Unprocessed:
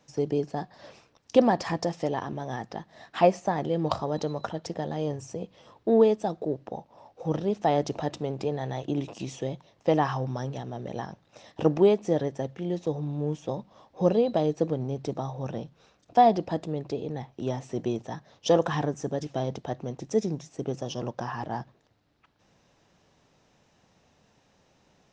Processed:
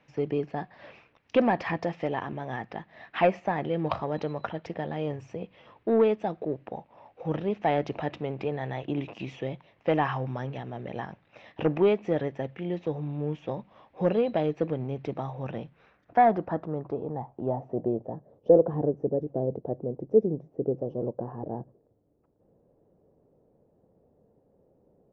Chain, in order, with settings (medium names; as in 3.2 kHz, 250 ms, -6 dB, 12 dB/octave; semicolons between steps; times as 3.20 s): saturation -10.5 dBFS, distortion -21 dB; low-pass sweep 2.4 kHz -> 480 Hz, 15.60–18.31 s; trim -1.5 dB